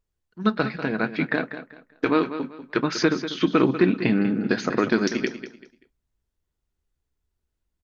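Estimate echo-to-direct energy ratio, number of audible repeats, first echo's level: −11.0 dB, 3, −11.5 dB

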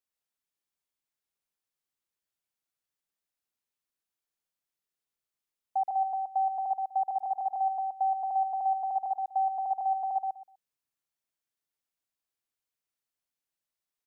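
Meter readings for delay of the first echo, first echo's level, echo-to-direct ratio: 124 ms, −4.0 dB, −4.0 dB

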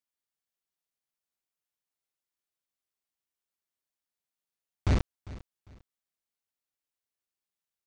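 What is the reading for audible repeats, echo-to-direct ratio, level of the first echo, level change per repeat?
2, −17.5 dB, −18.0 dB, −11.5 dB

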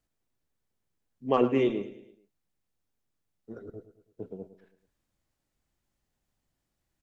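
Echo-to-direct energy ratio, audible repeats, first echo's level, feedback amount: −13.0 dB, 4, −14.0 dB, 47%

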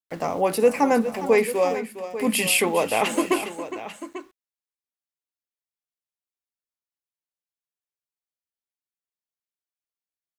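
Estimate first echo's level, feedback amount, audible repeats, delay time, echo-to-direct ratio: −12.0 dB, repeats not evenly spaced, 2, 410 ms, −9.5 dB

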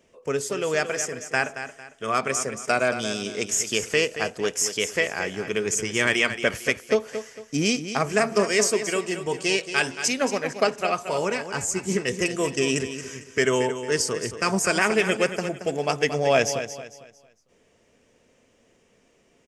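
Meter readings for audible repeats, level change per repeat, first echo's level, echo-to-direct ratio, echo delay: 3, −9.5 dB, −10.5 dB, −10.0 dB, 226 ms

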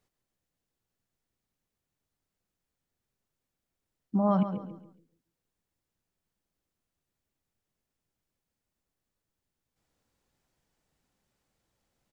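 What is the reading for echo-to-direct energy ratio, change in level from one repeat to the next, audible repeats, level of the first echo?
−9.5 dB, −9.5 dB, 3, −10.0 dB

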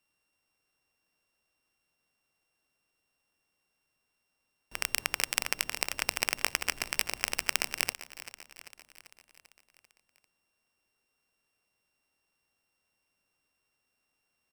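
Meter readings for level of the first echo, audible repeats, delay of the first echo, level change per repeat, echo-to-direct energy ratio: −15.5 dB, 5, 392 ms, −4.5 dB, −13.5 dB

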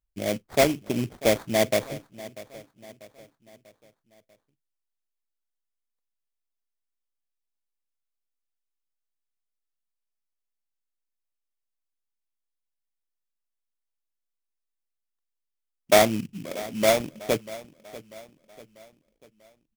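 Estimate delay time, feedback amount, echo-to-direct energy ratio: 642 ms, 47%, −17.0 dB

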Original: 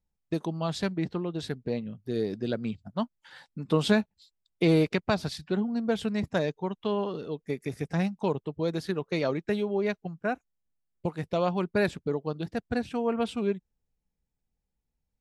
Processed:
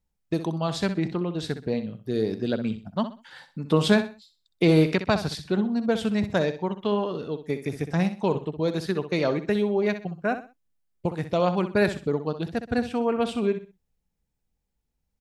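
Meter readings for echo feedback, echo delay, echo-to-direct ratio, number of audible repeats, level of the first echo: 29%, 63 ms, −10.5 dB, 3, −11.0 dB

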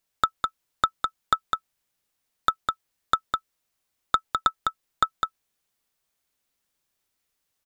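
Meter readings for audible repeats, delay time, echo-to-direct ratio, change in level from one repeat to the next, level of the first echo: 1, 205 ms, −4.5 dB, repeats not evenly spaced, −4.5 dB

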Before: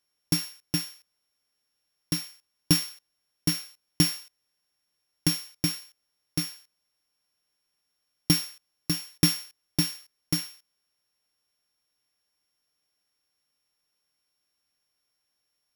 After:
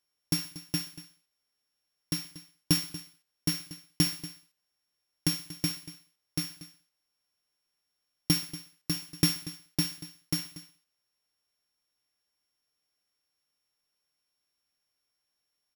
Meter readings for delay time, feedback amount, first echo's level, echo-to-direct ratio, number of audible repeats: 64 ms, repeats not evenly spaced, −20.0 dB, −14.5 dB, 3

